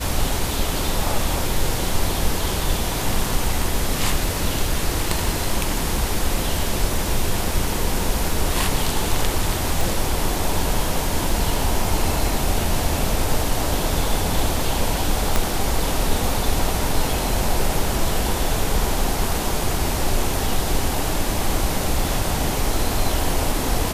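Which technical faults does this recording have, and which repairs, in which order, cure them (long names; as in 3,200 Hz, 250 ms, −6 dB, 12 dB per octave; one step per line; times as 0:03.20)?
0:09.81: click
0:15.36: click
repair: click removal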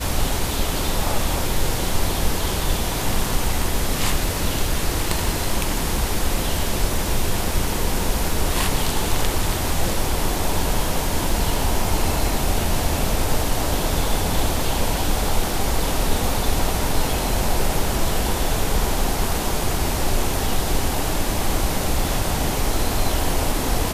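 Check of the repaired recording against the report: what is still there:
0:15.36: click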